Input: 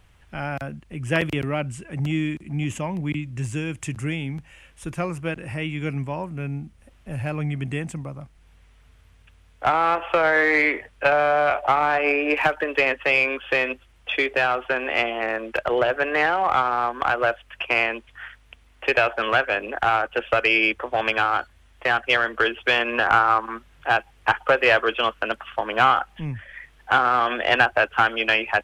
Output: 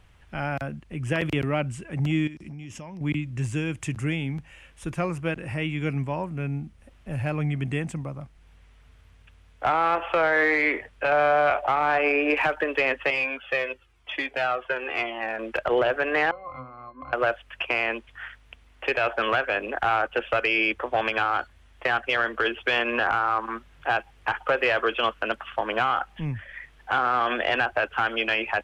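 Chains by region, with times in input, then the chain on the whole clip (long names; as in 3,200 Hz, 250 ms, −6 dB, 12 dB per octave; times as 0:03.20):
0:02.27–0:03.01: parametric band 5,400 Hz +15 dB 0.3 octaves + downward compressor 16 to 1, threshold −35 dBFS
0:13.10–0:15.39: high-pass filter 100 Hz 6 dB per octave + flanger whose copies keep moving one way falling 1 Hz
0:16.31–0:17.13: resonances in every octave C, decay 0.2 s + multiband upward and downward compressor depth 40%
whole clip: brickwall limiter −12.5 dBFS; high-shelf EQ 7,800 Hz −6 dB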